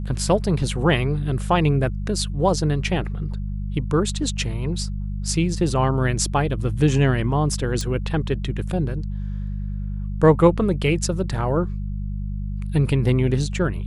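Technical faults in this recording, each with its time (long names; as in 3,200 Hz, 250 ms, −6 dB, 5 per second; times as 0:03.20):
mains hum 50 Hz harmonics 4 −27 dBFS
0:07.81: click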